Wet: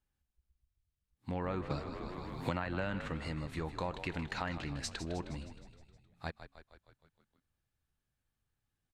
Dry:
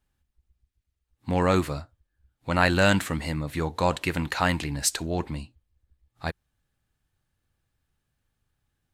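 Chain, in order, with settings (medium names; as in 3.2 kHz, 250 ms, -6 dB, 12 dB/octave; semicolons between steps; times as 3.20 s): low-pass that closes with the level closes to 2.6 kHz, closed at -19.5 dBFS; compression 4:1, threshold -25 dBFS, peak gain reduction 8.5 dB; frequency-shifting echo 156 ms, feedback 60%, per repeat -49 Hz, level -11 dB; 1.70–3.08 s: three bands compressed up and down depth 100%; trim -9 dB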